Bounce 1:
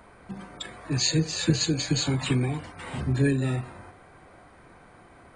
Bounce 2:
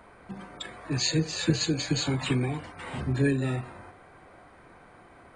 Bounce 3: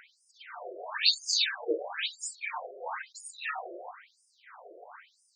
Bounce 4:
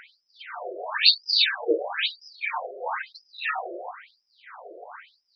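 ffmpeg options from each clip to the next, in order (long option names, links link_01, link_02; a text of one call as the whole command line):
ffmpeg -i in.wav -af "bass=frequency=250:gain=-3,treble=frequency=4000:gain=-4" out.wav
ffmpeg -i in.wav -filter_complex "[0:a]asplit=2[link_01][link_02];[link_02]asoftclip=type=tanh:threshold=-21dB,volume=-5dB[link_03];[link_01][link_03]amix=inputs=2:normalize=0,afftfilt=real='re*between(b*sr/1024,470*pow(7000/470,0.5+0.5*sin(2*PI*1*pts/sr))/1.41,470*pow(7000/470,0.5+0.5*sin(2*PI*1*pts/sr))*1.41)':imag='im*between(b*sr/1024,470*pow(7000/470,0.5+0.5*sin(2*PI*1*pts/sr))/1.41,470*pow(7000/470,0.5+0.5*sin(2*PI*1*pts/sr))*1.41)':win_size=1024:overlap=0.75,volume=5dB" out.wav
ffmpeg -i in.wav -af "aresample=11025,aresample=44100,volume=7dB" out.wav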